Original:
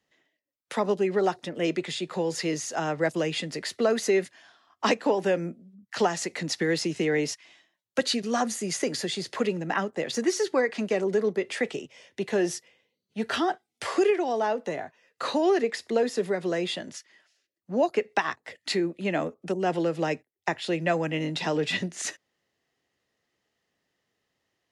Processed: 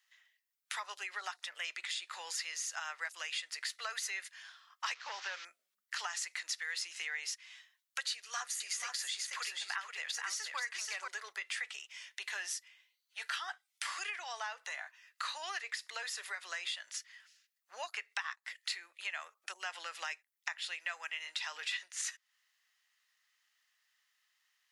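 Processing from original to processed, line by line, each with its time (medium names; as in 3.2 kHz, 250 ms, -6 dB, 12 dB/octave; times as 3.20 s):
4.94–5.45 s: one-bit delta coder 32 kbps, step -37.5 dBFS
8.12–11.08 s: delay 481 ms -5 dB
whole clip: high-pass 1.2 kHz 24 dB/octave; treble shelf 10 kHz +5 dB; compression 3:1, threshold -42 dBFS; trim +3 dB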